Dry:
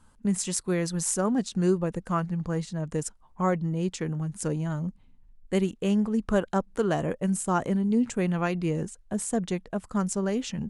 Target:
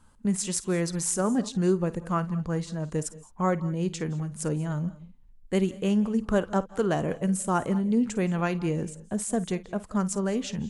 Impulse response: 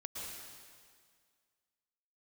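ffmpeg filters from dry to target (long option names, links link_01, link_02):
-filter_complex "[0:a]asplit=2[link_01][link_02];[1:a]atrim=start_sample=2205,afade=type=out:start_time=0.22:duration=0.01,atrim=end_sample=10143,adelay=53[link_03];[link_02][link_03]afir=irnorm=-1:irlink=0,volume=-12dB[link_04];[link_01][link_04]amix=inputs=2:normalize=0"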